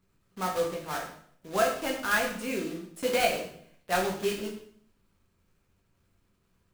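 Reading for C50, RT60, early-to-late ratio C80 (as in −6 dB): 6.5 dB, 0.60 s, 9.5 dB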